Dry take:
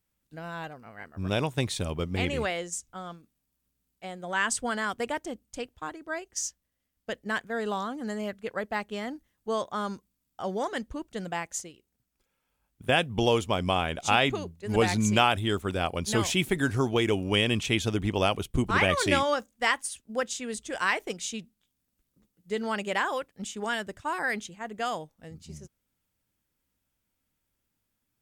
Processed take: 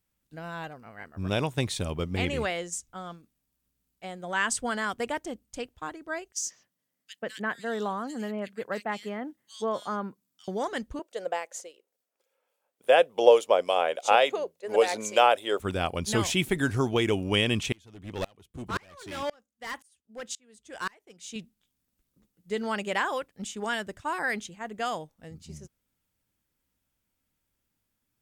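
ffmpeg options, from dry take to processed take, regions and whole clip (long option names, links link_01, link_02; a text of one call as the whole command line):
ffmpeg -i in.wav -filter_complex "[0:a]asettb=1/sr,asplit=3[link_01][link_02][link_03];[link_01]atrim=end=6.324[link_04];[link_02]atrim=start=6.32:end=10.48,asetpts=PTS-STARTPTS,afade=type=in:duration=0.004:curve=qsin,afade=type=out:start_time=4.156:duration=0.004:curve=qsin,highpass=frequency=130:width=0.5412,highpass=frequency=130:width=1.3066,asoftclip=type=hard:threshold=-18.5dB,acrossover=split=2600[link_05][link_06];[link_05]adelay=140[link_07];[link_07][link_06]amix=inputs=2:normalize=0,atrim=end_sample=183456[link_08];[link_03]atrim=start=10.476[link_09];[link_04][link_08]acrossfade=duration=0.004:curve1=hsin:curve2=qsin[link_10];[link_10][link_09]acrossfade=duration=0.004:curve1=qsin:curve2=hsin,asettb=1/sr,asplit=3[link_11][link_12][link_13];[link_11]atrim=end=10.994[link_14];[link_12]atrim=start=10.99:end=15.6,asetpts=PTS-STARTPTS,afade=type=in:duration=0.004:curve=qsin,afade=type=out:start_time=4.606:duration=0.004:curve=qsin,acrossover=split=2500[link_15][link_16];[link_15]aeval=exprs='val(0)*(1-0.5/2+0.5/2*cos(2*PI*3.5*n/s))':channel_layout=same[link_17];[link_16]aeval=exprs='val(0)*(1-0.5/2-0.5/2*cos(2*PI*3.5*n/s))':channel_layout=same[link_18];[link_17][link_18]amix=inputs=2:normalize=0,highpass=frequency=520:width_type=q:width=4.1[link_19];[link_13]atrim=start=15.596[link_20];[link_14][link_19]acrossfade=duration=0.004:curve1=hsin:curve2=qsin[link_21];[link_21][link_20]acrossfade=duration=0.004:curve1=qsin:curve2=hsin,asettb=1/sr,asplit=3[link_22][link_23][link_24];[link_22]atrim=end=17.724[link_25];[link_23]atrim=start=17.72:end=21.36,asetpts=PTS-STARTPTS,afade=type=in:duration=0.004:curve=qsin,afade=type=out:start_time=3.636:duration=0.004:curve=qsin,highpass=frequency=51:width=0.5412,highpass=frequency=51:width=1.3066,asoftclip=type=hard:threshold=-24.5dB,aeval=exprs='val(0)*pow(10,-32*if(lt(mod(-1.9*n/s,1),2*abs(-1.9)/1000),1-mod(-1.9*n/s,1)/(2*abs(-1.9)/1000),(mod(-1.9*n/s,1)-2*abs(-1.9)/1000)/(1-2*abs(-1.9)/1000))/20)':channel_layout=same[link_26];[link_24]atrim=start=21.356[link_27];[link_25][link_26]acrossfade=duration=0.004:curve1=hsin:curve2=qsin[link_28];[link_28][link_27]acrossfade=duration=0.004:curve1=qsin:curve2=hsin" out.wav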